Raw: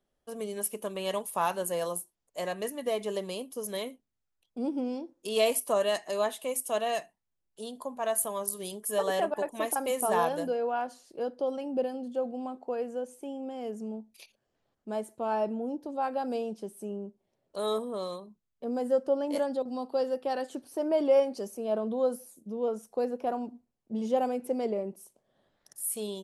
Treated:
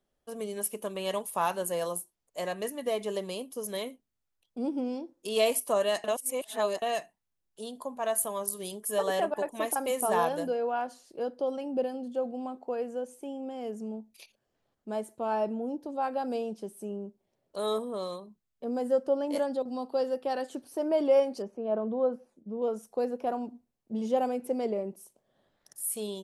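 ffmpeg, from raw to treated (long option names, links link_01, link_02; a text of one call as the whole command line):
ffmpeg -i in.wav -filter_complex "[0:a]asettb=1/sr,asplit=3[link_01][link_02][link_03];[link_01]atrim=end=21.424[link_04];[link_02]atrim=start=21.42:end=22.62,asetpts=PTS-STARTPTS,afade=type=in:duration=0.004:curve=qsin,afade=type=out:start_time=1.196:duration=0.004:curve=qsin,lowpass=1900[link_05];[link_03]atrim=start=22.616[link_06];[link_04][link_05]acrossfade=duration=0.004:curve1=hsin:curve2=qsin[link_07];[link_07][link_06]acrossfade=duration=0.004:curve1=qsin:curve2=hsin,asplit=3[link_08][link_09][link_10];[link_08]atrim=end=6.042[link_11];[link_09]atrim=start=6.038:end=6.822,asetpts=PTS-STARTPTS,areverse[link_12];[link_10]atrim=start=6.818[link_13];[link_11][link_12]acrossfade=duration=0.004:curve1=hsin:curve2=hsin[link_14];[link_14][link_13]acrossfade=duration=0.004:curve1=hsin:curve2=hsin" out.wav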